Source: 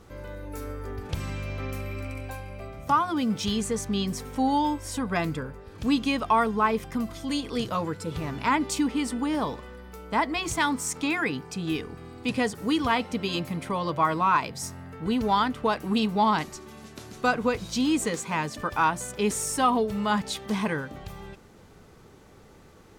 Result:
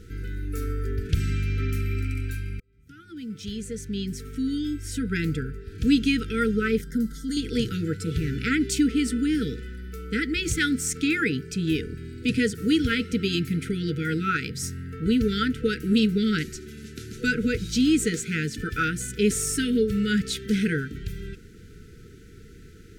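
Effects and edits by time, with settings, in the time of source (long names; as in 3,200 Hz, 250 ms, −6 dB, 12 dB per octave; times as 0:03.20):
0:02.60–0:05.84: fade in
0:06.81–0:07.37: phaser with its sweep stopped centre 510 Hz, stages 8
whole clip: brick-wall band-stop 490–1,300 Hz; low-shelf EQ 130 Hz +8.5 dB; level +2.5 dB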